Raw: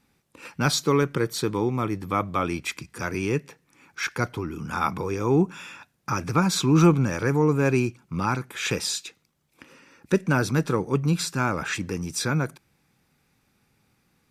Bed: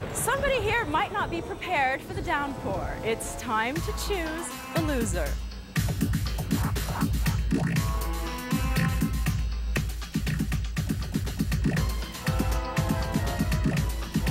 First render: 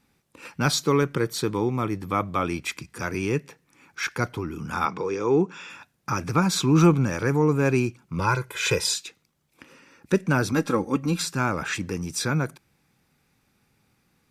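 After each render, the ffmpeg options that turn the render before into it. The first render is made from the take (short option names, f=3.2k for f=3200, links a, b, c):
-filter_complex "[0:a]asettb=1/sr,asplit=3[a][b][c];[a]atrim=end=4.854[d];[b]atrim=start=4.85:end=5.7,asetpts=PTS-STARTPTS,afade=t=in:d=0.004:c=qsin,afade=t=out:st=0.846:d=0.004:c=qsin,highpass=190,equalizer=f=240:t=q:w=4:g=-4,equalizer=f=450:t=q:w=4:g=5,equalizer=f=660:t=q:w=4:g=-4,lowpass=f=7k:w=0.5412,lowpass=f=7k:w=1.3066[e];[c]atrim=start=5.696[f];[d][e]acrossfade=d=0.004:c1=hsin:c2=qsin[g];[g][f]acrossfade=d=0.004:c1=qsin:c2=hsin,asettb=1/sr,asplit=3[h][i][j];[h]atrim=end=8.194[k];[i]atrim=start=8.19:end=8.94,asetpts=PTS-STARTPTS,afade=t=in:d=0.004:c=qsin,afade=t=out:st=0.746:d=0.004:c=qsin,aecho=1:1:2:1,atrim=end_sample=33075[l];[j]atrim=start=8.936[m];[k][l]acrossfade=d=0.004:c1=hsin:c2=qsin[n];[n][m]acrossfade=d=0.004:c1=qsin:c2=hsin,asettb=1/sr,asplit=3[o][p][q];[o]atrim=end=10.524[r];[p]atrim=start=10.52:end=11.22,asetpts=PTS-STARTPTS,afade=t=in:d=0.004:c=qsin,afade=t=out:st=0.696:d=0.004:c=qsin,aecho=1:1:3.7:0.65,atrim=end_sample=30870[s];[q]atrim=start=11.216[t];[r][s]acrossfade=d=0.004:c1=hsin:c2=qsin[u];[u][t]acrossfade=d=0.004:c1=qsin:c2=hsin"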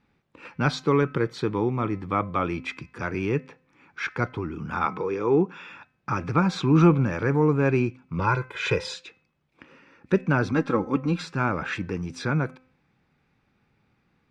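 -af "lowpass=2.9k,bandreject=f=257.4:t=h:w=4,bandreject=f=514.8:t=h:w=4,bandreject=f=772.2:t=h:w=4,bandreject=f=1.0296k:t=h:w=4,bandreject=f=1.287k:t=h:w=4,bandreject=f=1.5444k:t=h:w=4,bandreject=f=1.8018k:t=h:w=4,bandreject=f=2.0592k:t=h:w=4,bandreject=f=2.3166k:t=h:w=4,bandreject=f=2.574k:t=h:w=4"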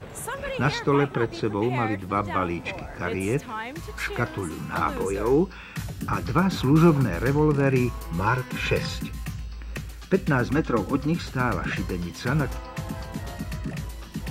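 -filter_complex "[1:a]volume=-6.5dB[a];[0:a][a]amix=inputs=2:normalize=0"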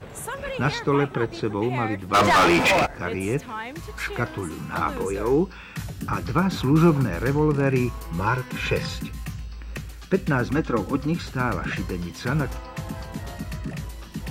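-filter_complex "[0:a]asplit=3[a][b][c];[a]afade=t=out:st=2.13:d=0.02[d];[b]asplit=2[e][f];[f]highpass=f=720:p=1,volume=33dB,asoftclip=type=tanh:threshold=-9.5dB[g];[e][g]amix=inputs=2:normalize=0,lowpass=f=4.6k:p=1,volume=-6dB,afade=t=in:st=2.13:d=0.02,afade=t=out:st=2.85:d=0.02[h];[c]afade=t=in:st=2.85:d=0.02[i];[d][h][i]amix=inputs=3:normalize=0"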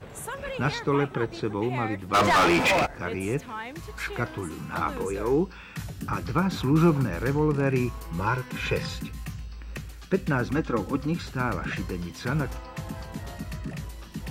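-af "volume=-3dB"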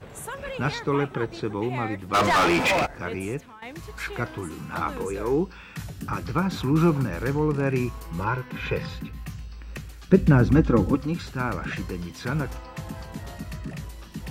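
-filter_complex "[0:a]asettb=1/sr,asplit=3[a][b][c];[a]atrim=end=8.244[d];[b]atrim=start=8.24:end=9.27,asetpts=PTS-STARTPTS,afade=t=in:d=0.004:c=qsin,afade=t=out:st=1.026:d=0.004:c=qsin,equalizer=f=8.1k:t=o:w=1.5:g=-11.5[e];[c]atrim=start=9.266[f];[d][e]acrossfade=d=0.004:c1=hsin:c2=qsin[g];[g][f]acrossfade=d=0.004:c1=qsin:c2=hsin,asettb=1/sr,asplit=3[h][i][j];[h]atrim=end=10.094[k];[i]atrim=start=10.09:end=10.95,asetpts=PTS-STARTPTS,afade=t=in:d=0.004:c=qsin,afade=t=out:st=0.856:d=0.004:c=qsin,lowshelf=f=430:g=12[l];[j]atrim=start=10.946[m];[k][l]acrossfade=d=0.004:c1=hsin:c2=qsin[n];[n][m]acrossfade=d=0.004:c1=qsin:c2=hsin,asplit=2[o][p];[o]atrim=end=3.62,asetpts=PTS-STARTPTS,afade=t=out:st=3.19:d=0.43:silence=0.149624[q];[p]atrim=start=3.62,asetpts=PTS-STARTPTS,afade=t=in:d=0.004:c=hsin:silence=0.149624[r];[q][r]concat=n=2:v=0:a=1"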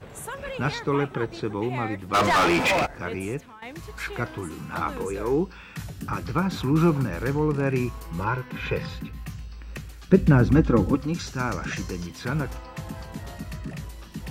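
-filter_complex "[0:a]asettb=1/sr,asplit=3[a][b][c];[a]atrim=end=11.144[d];[b]atrim=start=11.14:end=12.07,asetpts=PTS-STARTPTS,afade=t=in:d=0.004:c=qsin,afade=t=out:st=0.926:d=0.004:c=qsin,equalizer=f=6k:w=2:g=11.5[e];[c]atrim=start=12.066[f];[d][e]acrossfade=d=0.004:c1=hsin:c2=qsin[g];[g][f]acrossfade=d=0.004:c1=qsin:c2=hsin"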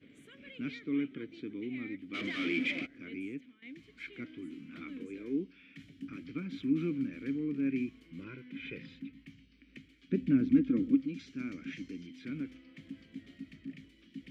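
-filter_complex "[0:a]asplit=3[a][b][c];[a]bandpass=f=270:t=q:w=8,volume=0dB[d];[b]bandpass=f=2.29k:t=q:w=8,volume=-6dB[e];[c]bandpass=f=3.01k:t=q:w=8,volume=-9dB[f];[d][e][f]amix=inputs=3:normalize=0"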